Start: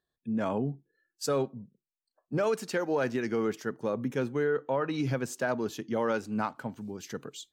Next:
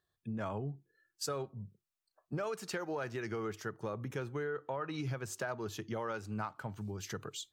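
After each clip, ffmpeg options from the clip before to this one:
-af "equalizer=f=100:t=o:w=0.33:g=11,equalizer=f=250:t=o:w=0.33:g=-12,equalizer=f=500:t=o:w=0.33:g=-4,equalizer=f=1.25k:t=o:w=0.33:g=4,acompressor=threshold=-39dB:ratio=3,volume=1.5dB"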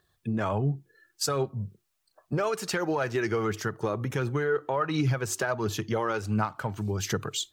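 -filter_complex "[0:a]aphaser=in_gain=1:out_gain=1:delay=3.2:decay=0.33:speed=1.4:type=triangular,asplit=2[a][b];[b]alimiter=level_in=9dB:limit=-24dB:level=0:latency=1:release=272,volume=-9dB,volume=-1dB[c];[a][c]amix=inputs=2:normalize=0,volume=6.5dB"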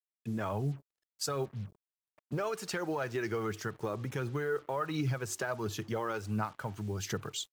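-af "acrusher=bits=7:mix=0:aa=0.5,volume=-6.5dB"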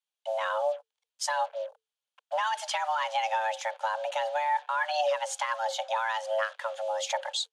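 -af "afreqshift=440,highpass=440,equalizer=f=660:t=q:w=4:g=-3,equalizer=f=1.2k:t=q:w=4:g=-5,equalizer=f=2k:t=q:w=4:g=-7,equalizer=f=3.2k:t=q:w=4:g=6,equalizer=f=5.3k:t=q:w=4:g=-5,equalizer=f=7.9k:t=q:w=4:g=-6,lowpass=f=8.9k:w=0.5412,lowpass=f=8.9k:w=1.3066,volume=7.5dB"

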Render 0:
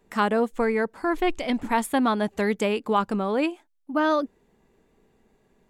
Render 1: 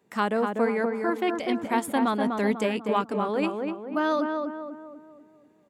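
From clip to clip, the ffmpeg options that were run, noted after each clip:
-filter_complex "[0:a]highpass=f=99:w=0.5412,highpass=f=99:w=1.3066,asplit=2[a][b];[b]adelay=246,lowpass=f=1.5k:p=1,volume=-3.5dB,asplit=2[c][d];[d]adelay=246,lowpass=f=1.5k:p=1,volume=0.48,asplit=2[e][f];[f]adelay=246,lowpass=f=1.5k:p=1,volume=0.48,asplit=2[g][h];[h]adelay=246,lowpass=f=1.5k:p=1,volume=0.48,asplit=2[i][j];[j]adelay=246,lowpass=f=1.5k:p=1,volume=0.48,asplit=2[k][l];[l]adelay=246,lowpass=f=1.5k:p=1,volume=0.48[m];[c][e][g][i][k][m]amix=inputs=6:normalize=0[n];[a][n]amix=inputs=2:normalize=0,volume=-3dB"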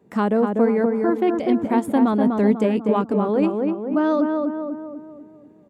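-filter_complex "[0:a]tiltshelf=f=850:g=8,asplit=2[a][b];[b]acompressor=threshold=-28dB:ratio=6,volume=-1dB[c];[a][c]amix=inputs=2:normalize=0"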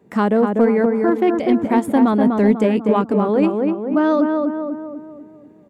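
-filter_complex "[0:a]equalizer=f=2k:t=o:w=0.68:g=2.5,asplit=2[a][b];[b]volume=11.5dB,asoftclip=hard,volume=-11.5dB,volume=-7dB[c];[a][c]amix=inputs=2:normalize=0"

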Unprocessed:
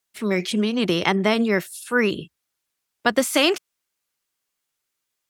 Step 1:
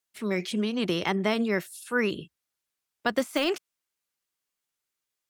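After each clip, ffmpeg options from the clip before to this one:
-af "deesser=0.55,volume=-6dB"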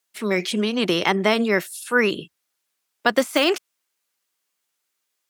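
-af "highpass=f=280:p=1,volume=8.5dB"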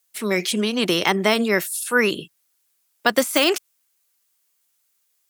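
-af "highshelf=f=6.6k:g=11.5"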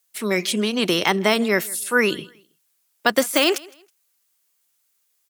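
-af "aecho=1:1:161|322:0.0668|0.0187"

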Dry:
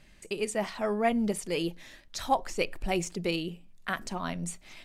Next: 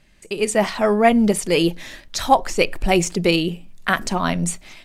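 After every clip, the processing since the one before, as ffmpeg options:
-af "dynaudnorm=f=110:g=7:m=12.5dB,volume=1dB"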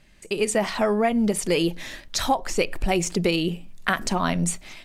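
-af "acompressor=threshold=-18dB:ratio=6"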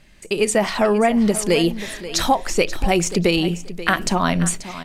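-af "aecho=1:1:534|1068:0.188|0.0414,volume=4.5dB"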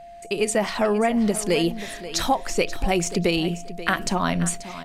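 -af "aeval=exprs='val(0)+0.0158*sin(2*PI*690*n/s)':c=same,volume=-4dB"

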